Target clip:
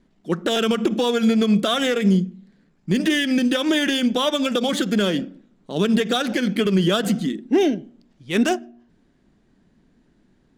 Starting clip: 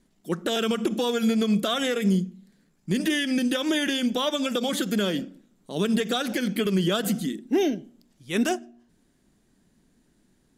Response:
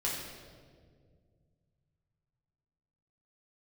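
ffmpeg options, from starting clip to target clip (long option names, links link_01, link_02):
-af "adynamicsmooth=sensitivity=7:basefreq=4200,volume=5dB"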